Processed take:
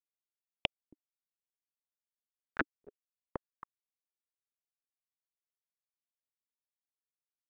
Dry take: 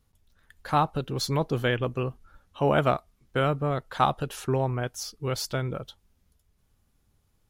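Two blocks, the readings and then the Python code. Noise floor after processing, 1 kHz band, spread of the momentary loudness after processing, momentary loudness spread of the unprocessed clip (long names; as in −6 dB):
below −85 dBFS, −22.0 dB, 20 LU, 9 LU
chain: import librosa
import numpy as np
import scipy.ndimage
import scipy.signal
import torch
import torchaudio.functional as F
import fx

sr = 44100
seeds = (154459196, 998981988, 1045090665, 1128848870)

p1 = fx.wiener(x, sr, points=9)
p2 = scipy.signal.sosfilt(scipy.signal.butter(2, 56.0, 'highpass', fs=sr, output='sos'), p1)
p3 = fx.level_steps(p2, sr, step_db=13)
p4 = p2 + (p3 * 10.0 ** (-1.5 / 20.0))
p5 = fx.quant_float(p4, sr, bits=4)
p6 = fx.tube_stage(p5, sr, drive_db=19.0, bias=0.65)
p7 = fx.gate_flip(p6, sr, shuts_db=-33.0, range_db=-26)
p8 = fx.quant_dither(p7, sr, seeds[0], bits=6, dither='none')
p9 = p8 * np.sin(2.0 * np.pi * 1500.0 * np.arange(len(p8)) / sr)
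p10 = p9 + fx.echo_single(p9, sr, ms=274, db=-22.0, dry=0)
p11 = fx.filter_held_lowpass(p10, sr, hz=9.2, low_hz=300.0, high_hz=3000.0)
y = p11 * 10.0 ** (16.0 / 20.0)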